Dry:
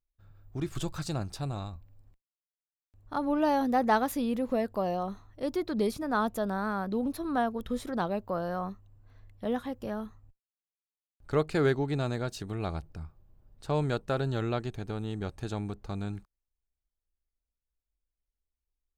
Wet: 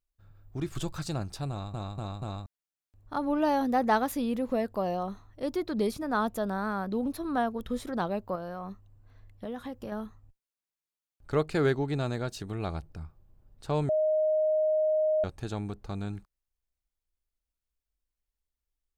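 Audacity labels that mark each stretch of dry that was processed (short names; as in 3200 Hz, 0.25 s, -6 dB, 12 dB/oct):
1.500000	1.500000	stutter in place 0.24 s, 4 plays
8.350000	9.920000	compressor 4:1, threshold -33 dBFS
13.890000	15.240000	bleep 621 Hz -22.5 dBFS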